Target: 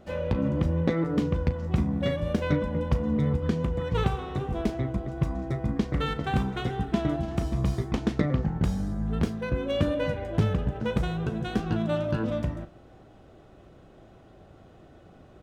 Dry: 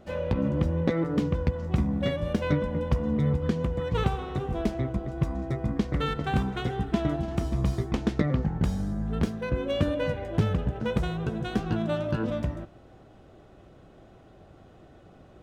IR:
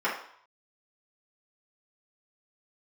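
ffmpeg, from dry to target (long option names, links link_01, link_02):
-filter_complex "[0:a]asplit=2[link_01][link_02];[link_02]adelay=37,volume=-13.5dB[link_03];[link_01][link_03]amix=inputs=2:normalize=0"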